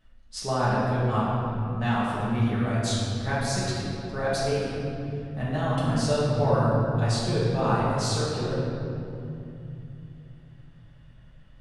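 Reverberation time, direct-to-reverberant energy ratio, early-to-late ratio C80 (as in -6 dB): 2.8 s, -9.5 dB, -0.5 dB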